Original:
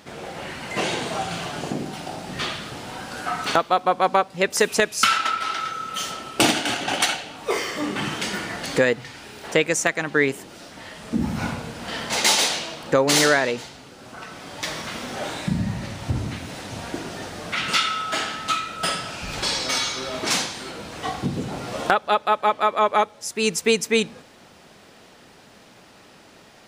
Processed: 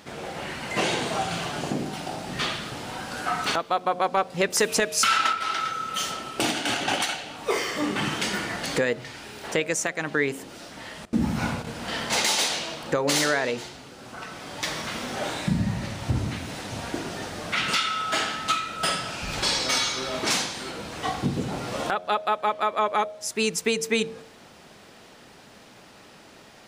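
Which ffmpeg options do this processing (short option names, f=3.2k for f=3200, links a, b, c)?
-filter_complex "[0:a]asettb=1/sr,asplit=3[a][b][c];[a]atrim=end=4.174[d];[b]atrim=start=4.17:end=5.33,asetpts=PTS-STARTPTS,afade=t=in:d=0.004:c=qsin,afade=t=out:st=1.156:d=0.004:c=qsin,acontrast=41[e];[c]atrim=start=5.326[f];[d][e]acrossfade=d=0.004:c1=hsin:c2=qsin[g];[g][f]acrossfade=d=0.004:c1=qsin:c2=hsin,asettb=1/sr,asplit=3[h][i][j];[h]atrim=end=11.054[k];[i]atrim=start=11.05:end=11.67,asetpts=PTS-STARTPTS,afade=t=in:d=0.004:c=qsin,afade=t=out:st=0.616:d=0.004:c=qsin,agate=range=-20dB:threshold=-34dB:ratio=16:release=100:detection=peak[l];[j]atrim=start=11.666[m];[k][l]acrossfade=d=0.004:c1=hsin:c2=qsin[n];[n][m]acrossfade=d=0.004:c1=qsin:c2=hsin,bandreject=f=89.76:t=h:w=4,bandreject=f=179.52:t=h:w=4,bandreject=f=269.28:t=h:w=4,bandreject=f=359.04:t=h:w=4,bandreject=f=448.8:t=h:w=4,bandreject=f=538.56:t=h:w=4,bandreject=f=628.32:t=h:w=4,bandreject=f=718.08:t=h:w=4,alimiter=limit=-12dB:level=0:latency=1:release=289"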